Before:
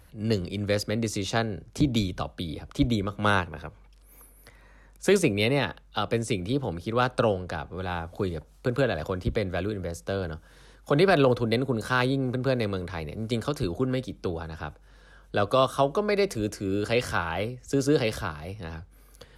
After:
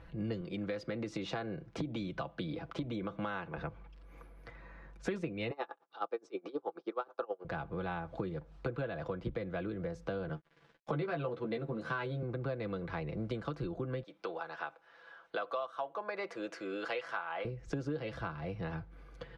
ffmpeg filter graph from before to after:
-filter_complex "[0:a]asettb=1/sr,asplit=3[a][b][c];[a]atrim=end=0.414[d];[b]atrim=start=0.41:end=3.58,asetpts=PTS-STARTPTS,afade=t=in:d=0.004:c=qsin,afade=t=out:st=3.166:d=0.004:c=qsin,highpass=f=180:p=1,acompressor=threshold=-27dB:ratio=2.5:attack=3.2:release=140:knee=1:detection=peak[e];[c]atrim=start=3.576[f];[d][e]acrossfade=d=0.004:c1=hsin:c2=qsin[g];[g][f]acrossfade=d=0.004:c1=qsin:c2=hsin,asettb=1/sr,asplit=3[h][i][j];[h]atrim=end=5.514[k];[i]atrim=start=5.51:end=7.45,asetpts=PTS-STARTPTS,afade=t=in:d=0.004:c=qsin,afade=t=out:st=1.936:d=0.004:c=qsin,highpass=f=310:w=0.5412,highpass=f=310:w=1.3066,equalizer=f=400:t=q:w=4:g=7,equalizer=f=810:t=q:w=4:g=8,equalizer=f=1.2k:t=q:w=4:g=7,equalizer=f=2k:t=q:w=4:g=-4,equalizer=f=2.8k:t=q:w=4:g=-4,equalizer=f=5.5k:t=q:w=4:g=6,lowpass=f=7.5k:w=0.5412,lowpass=f=7.5k:w=1.3066,aeval=exprs='val(0)*pow(10,-30*(0.5-0.5*cos(2*PI*9.4*n/s))/20)':c=same[l];[j]atrim=start=7.446[m];[k][l]acrossfade=d=0.004:c1=hsin:c2=qsin[n];[n][m]acrossfade=d=0.004:c1=qsin:c2=hsin,asettb=1/sr,asplit=3[o][p][q];[o]atrim=end=10.294[r];[p]atrim=start=10.29:end=12.23,asetpts=PTS-STARTPTS,afade=t=in:d=0.004:c=qsin,afade=t=out:st=1.936:d=0.004:c=qsin,highpass=f=100:w=0.5412,highpass=f=100:w=1.3066,aeval=exprs='sgn(val(0))*max(abs(val(0))-0.00266,0)':c=same,asplit=2[s][t];[t]adelay=13,volume=-4dB[u];[s][u]amix=inputs=2:normalize=0,atrim=end_sample=85554[v];[q]atrim=start=12.226[w];[r][v]acrossfade=d=0.004:c1=hsin:c2=qsin[x];[x][w]acrossfade=d=0.004:c1=qsin:c2=hsin,asettb=1/sr,asplit=3[y][z][aa];[y]atrim=end=14.034[ab];[z]atrim=start=14.03:end=17.45,asetpts=PTS-STARTPTS,afade=t=in:d=0.004:c=qsin,afade=t=out:st=3.416:d=0.004:c=qsin,highpass=650,adynamicequalizer=threshold=0.00891:dfrequency=1700:dqfactor=0.7:tfrequency=1700:tqfactor=0.7:attack=5:release=100:ratio=0.375:range=2.5:mode=cutabove:tftype=highshelf[ac];[aa]atrim=start=17.446[ad];[ab][ac]acrossfade=d=0.004:c1=hsin:c2=qsin[ae];[ae][ad]acrossfade=d=0.004:c1=qsin:c2=hsin,lowpass=2.5k,aecho=1:1:6:0.56,acompressor=threshold=-36dB:ratio=6,volume=1dB"

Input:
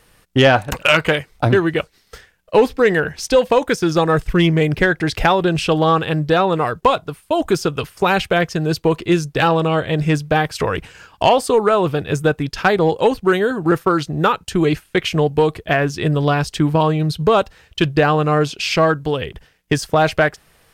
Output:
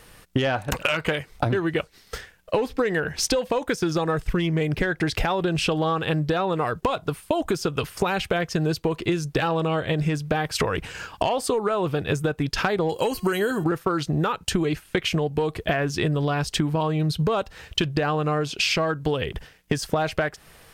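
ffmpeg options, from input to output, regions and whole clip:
-filter_complex "[0:a]asettb=1/sr,asplit=3[a][b][c];[a]atrim=end=12.894[d];[b]atrim=start=12.89:end=13.64,asetpts=PTS-STARTPTS,afade=t=in:d=0.004:c=qsin,afade=t=out:st=0.746:d=0.004:c=qsin,asuperstop=centerf=3600:order=20:qfactor=7.9,aemphasis=mode=production:type=75kf,bandreject=f=358.9:t=h:w=4,bandreject=f=717.8:t=h:w=4,bandreject=f=1.0767k:t=h:w=4,bandreject=f=1.4356k:t=h:w=4,bandreject=f=1.7945k:t=h:w=4,bandreject=f=2.1534k:t=h:w=4,bandreject=f=2.5123k:t=h:w=4,bandreject=f=2.8712k:t=h:w=4,bandreject=f=3.2301k:t=h:w=4,bandreject=f=3.589k:t=h:w=4,bandreject=f=3.9479k:t=h:w=4,bandreject=f=4.3068k:t=h:w=4,bandreject=f=4.6657k:t=h:w=4,bandreject=f=5.0246k:t=h:w=4,bandreject=f=5.3835k:t=h:w=4,bandreject=f=5.7424k:t=h:w=4,bandreject=f=6.1013k:t=h:w=4,bandreject=f=6.4602k:t=h:w=4,bandreject=f=6.8191k:t=h:w=4,bandreject=f=7.178k:t=h:w=4,bandreject=f=7.5369k:t=h:w=4,bandreject=f=7.8958k:t=h:w=4,bandreject=f=8.2547k:t=h:w=4,bandreject=f=8.6136k:t=h:w=4,bandreject=f=8.9725k:t=h:w=4,bandreject=f=9.3314k:t=h:w=4,bandreject=f=9.6903k:t=h:w=4[e];[c]atrim=start=13.636[f];[d][e]acrossfade=d=0.004:c1=hsin:c2=qsin[g];[g][f]acrossfade=d=0.004:c1=qsin:c2=hsin,dynaudnorm=f=440:g=11:m=11.5dB,alimiter=limit=-7.5dB:level=0:latency=1:release=222,acompressor=threshold=-24dB:ratio=10,volume=4dB"

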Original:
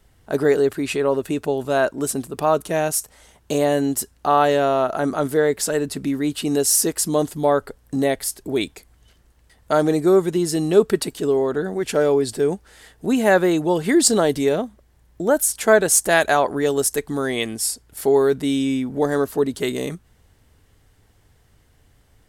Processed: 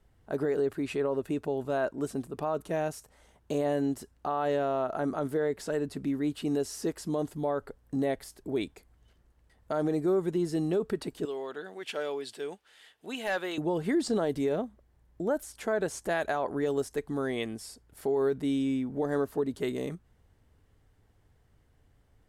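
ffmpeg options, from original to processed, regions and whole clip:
-filter_complex "[0:a]asettb=1/sr,asplit=3[a][b][c];[a]atrim=end=11.254[d];[b]atrim=start=11.25:end=13.58,asetpts=PTS-STARTPTS,afade=t=in:d=0.004:c=qsin,afade=t=out:st=2.326:d=0.004:c=qsin,highpass=f=1.2k:p=1,equalizer=f=3.1k:t=o:w=0.91:g=10,asoftclip=type=hard:threshold=-14dB[e];[c]atrim=start=13.576[f];[d][e]acrossfade=d=0.004:c1=hsin:c2=qsin[g];[g][f]acrossfade=d=0.004:c1=qsin:c2=hsin,acrossover=split=5600[h][i];[i]acompressor=threshold=-30dB:ratio=4:attack=1:release=60[j];[h][j]amix=inputs=2:normalize=0,highshelf=f=2.3k:g=-9,alimiter=limit=-12.5dB:level=0:latency=1:release=65,volume=-7.5dB"

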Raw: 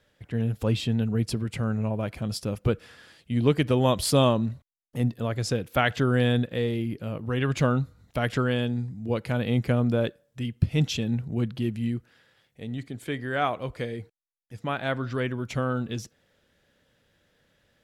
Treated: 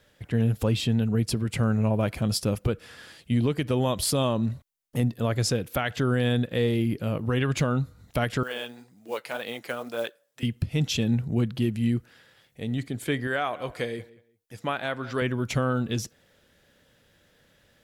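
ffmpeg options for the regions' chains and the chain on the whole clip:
-filter_complex "[0:a]asettb=1/sr,asplit=3[a][b][c];[a]atrim=end=8.434[d];[b]atrim=start=8.43:end=10.43,asetpts=PTS-STARTPTS,afade=t=in:d=0.004:c=qsin,afade=t=out:st=1.996:d=0.004:c=qsin,highpass=580,flanger=delay=0.2:depth=7.5:regen=51:speed=1.9:shape=sinusoidal,acrusher=bits=6:mode=log:mix=0:aa=0.000001[e];[c]atrim=start=10.426[f];[d][e]acrossfade=d=0.004:c1=hsin:c2=qsin[g];[g][f]acrossfade=d=0.004:c1=qsin:c2=hsin,asettb=1/sr,asplit=3[h][i][j];[h]atrim=end=13.274[k];[i]atrim=start=13.27:end=15.22,asetpts=PTS-STARTPTS,afade=t=in:d=0.004:c=qsin,afade=t=out:st=1.946:d=0.004:c=qsin,lowshelf=f=210:g=-10.5,asplit=2[l][m];[m]adelay=180,lowpass=f=3.5k:p=1,volume=-20dB,asplit=2[n][o];[o]adelay=180,lowpass=f=3.5k:p=1,volume=0.22[p];[l][n][p]amix=inputs=3:normalize=0,atrim=end_sample=85995[q];[j]atrim=start=15.216[r];[k][q]acrossfade=d=0.004:c1=hsin:c2=qsin[s];[s][r]acrossfade=d=0.004:c1=qsin:c2=hsin,highshelf=f=7.5k:g=5.5,alimiter=limit=-20dB:level=0:latency=1:release=304,volume=4.5dB"

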